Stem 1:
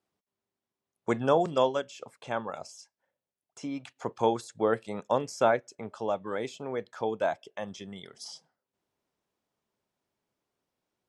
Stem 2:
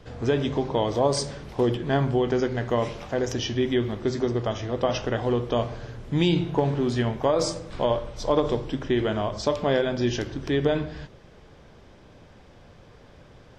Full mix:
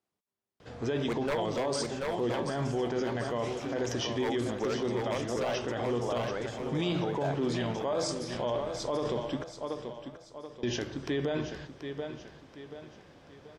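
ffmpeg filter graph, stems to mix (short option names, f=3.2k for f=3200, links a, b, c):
-filter_complex "[0:a]aeval=exprs='0.119*(abs(mod(val(0)/0.119+3,4)-2)-1)':c=same,volume=-3.5dB,asplit=2[a][b];[b]volume=-5.5dB[c];[1:a]highpass=f=160:p=1,adelay=600,volume=-3dB,asplit=3[d][e][f];[d]atrim=end=9.44,asetpts=PTS-STARTPTS,afade=t=out:st=9.436:d=0.004:c=hsin[g];[e]atrim=start=9.44:end=10.63,asetpts=PTS-STARTPTS,volume=0[h];[f]atrim=start=10.63,asetpts=PTS-STARTPTS,afade=t=in:d=0.004:c=hsin[i];[g][h][i]concat=n=3:v=0:a=1,asplit=2[j][k];[k]volume=-11dB[l];[c][l]amix=inputs=2:normalize=0,aecho=0:1:732|1464|2196|2928|3660|4392:1|0.4|0.16|0.064|0.0256|0.0102[m];[a][j][m]amix=inputs=3:normalize=0,alimiter=limit=-22.5dB:level=0:latency=1:release=14"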